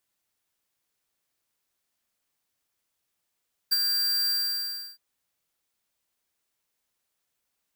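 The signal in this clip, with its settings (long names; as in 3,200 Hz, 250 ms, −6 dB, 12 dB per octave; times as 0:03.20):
note with an ADSR envelope square 4,720 Hz, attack 17 ms, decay 27 ms, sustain −5 dB, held 0.58 s, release 685 ms −20.5 dBFS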